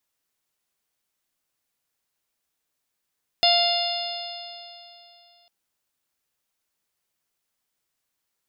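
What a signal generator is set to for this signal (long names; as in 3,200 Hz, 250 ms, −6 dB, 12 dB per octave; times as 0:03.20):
stiff-string partials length 2.05 s, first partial 694 Hz, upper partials −18/−13/−5/−2/−3/−1.5 dB, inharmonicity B 0.0018, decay 2.86 s, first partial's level −19 dB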